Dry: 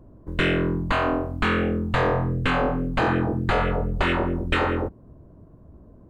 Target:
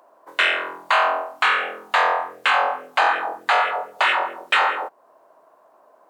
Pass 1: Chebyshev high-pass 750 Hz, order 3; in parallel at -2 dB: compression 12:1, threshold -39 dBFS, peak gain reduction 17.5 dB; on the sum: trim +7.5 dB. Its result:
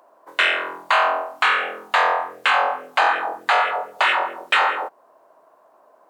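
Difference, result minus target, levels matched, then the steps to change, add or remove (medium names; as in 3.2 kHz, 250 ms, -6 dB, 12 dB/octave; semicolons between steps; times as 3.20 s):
compression: peak gain reduction -6 dB
change: compression 12:1, threshold -45.5 dBFS, peak gain reduction 23.5 dB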